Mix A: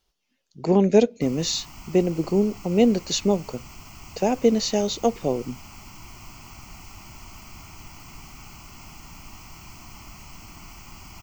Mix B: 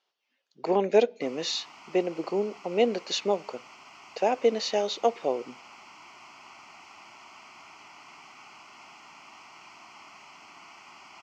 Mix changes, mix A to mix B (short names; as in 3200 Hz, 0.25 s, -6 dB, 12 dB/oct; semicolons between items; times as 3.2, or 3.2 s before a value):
speech: send +8.5 dB; master: add BPF 510–3700 Hz